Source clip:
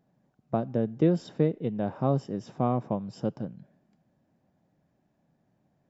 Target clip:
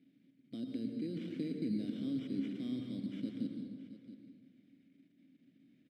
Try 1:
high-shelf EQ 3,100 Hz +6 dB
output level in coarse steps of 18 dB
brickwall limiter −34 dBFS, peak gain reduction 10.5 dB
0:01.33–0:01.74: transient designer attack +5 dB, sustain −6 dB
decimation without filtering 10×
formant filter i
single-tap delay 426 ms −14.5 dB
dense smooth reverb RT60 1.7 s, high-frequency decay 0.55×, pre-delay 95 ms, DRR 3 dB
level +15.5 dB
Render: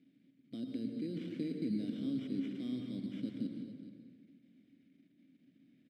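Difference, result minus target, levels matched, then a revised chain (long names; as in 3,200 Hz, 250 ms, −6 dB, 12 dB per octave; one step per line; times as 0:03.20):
echo 248 ms early
high-shelf EQ 3,100 Hz +6 dB
output level in coarse steps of 18 dB
brickwall limiter −34 dBFS, peak gain reduction 10.5 dB
0:01.33–0:01.74: transient designer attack +5 dB, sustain −6 dB
decimation without filtering 10×
formant filter i
single-tap delay 674 ms −14.5 dB
dense smooth reverb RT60 1.7 s, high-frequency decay 0.55×, pre-delay 95 ms, DRR 3 dB
level +15.5 dB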